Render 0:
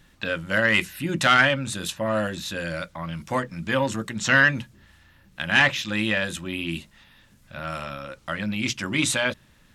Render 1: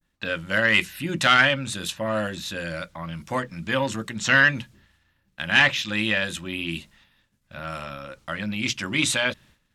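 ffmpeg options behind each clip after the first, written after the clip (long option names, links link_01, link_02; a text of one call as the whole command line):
ffmpeg -i in.wav -af "adynamicequalizer=threshold=0.0251:dfrequency=3200:dqfactor=0.72:tfrequency=3200:tqfactor=0.72:attack=5:release=100:ratio=0.375:range=2:mode=boostabove:tftype=bell,agate=range=-33dB:threshold=-46dB:ratio=3:detection=peak,volume=-1.5dB" out.wav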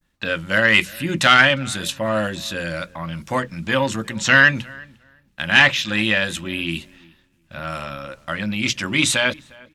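ffmpeg -i in.wav -filter_complex "[0:a]asplit=2[link_01][link_02];[link_02]adelay=355,lowpass=frequency=1900:poles=1,volume=-23dB,asplit=2[link_03][link_04];[link_04]adelay=355,lowpass=frequency=1900:poles=1,volume=0.18[link_05];[link_01][link_03][link_05]amix=inputs=3:normalize=0,volume=4.5dB" out.wav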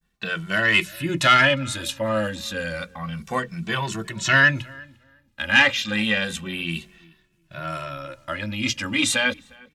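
ffmpeg -i in.wav -filter_complex "[0:a]asplit=2[link_01][link_02];[link_02]adelay=2.2,afreqshift=-0.3[link_03];[link_01][link_03]amix=inputs=2:normalize=1" out.wav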